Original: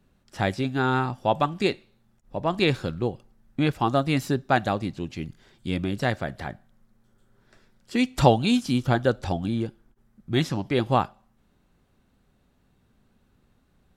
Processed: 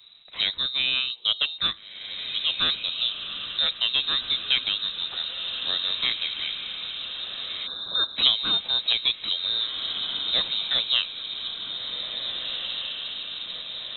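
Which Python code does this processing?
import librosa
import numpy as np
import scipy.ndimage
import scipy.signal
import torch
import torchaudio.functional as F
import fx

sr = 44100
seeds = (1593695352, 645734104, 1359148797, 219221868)

y = fx.tracing_dist(x, sr, depth_ms=0.11)
y = fx.echo_diffused(y, sr, ms=1838, feedback_pct=54, wet_db=-9.5)
y = fx.spec_box(y, sr, start_s=7.67, length_s=0.5, low_hz=430.0, high_hz=2200.0, gain_db=-28)
y = fx.freq_invert(y, sr, carrier_hz=3900)
y = fx.band_squash(y, sr, depth_pct=40)
y = F.gain(torch.from_numpy(y), -2.0).numpy()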